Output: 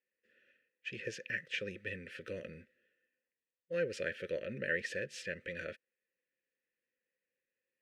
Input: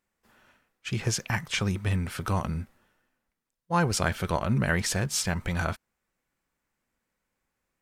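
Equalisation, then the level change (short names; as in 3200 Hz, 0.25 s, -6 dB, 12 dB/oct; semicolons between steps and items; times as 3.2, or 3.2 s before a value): dynamic EQ 700 Hz, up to +7 dB, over -45 dBFS, Q 2.5; vowel filter e; Butterworth band-stop 790 Hz, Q 0.84; +5.0 dB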